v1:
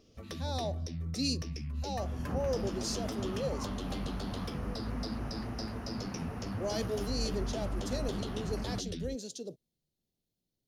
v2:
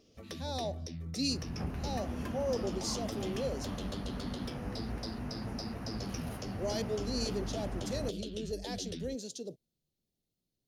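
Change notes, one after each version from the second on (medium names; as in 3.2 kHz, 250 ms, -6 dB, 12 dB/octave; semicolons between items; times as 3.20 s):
first sound: add bass shelf 120 Hz -7.5 dB; second sound: entry -0.70 s; master: add peaking EQ 1.2 kHz -3.5 dB 0.75 oct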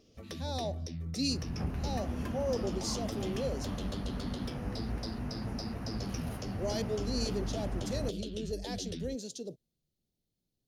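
master: add bass shelf 160 Hz +4 dB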